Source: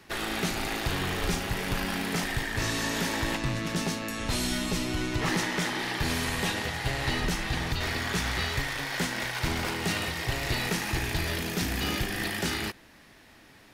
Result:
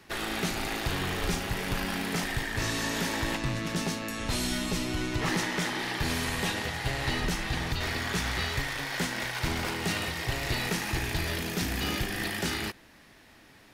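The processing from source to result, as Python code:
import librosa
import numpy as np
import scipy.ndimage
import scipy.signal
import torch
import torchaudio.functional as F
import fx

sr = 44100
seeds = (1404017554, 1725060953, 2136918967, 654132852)

y = x * librosa.db_to_amplitude(-1.0)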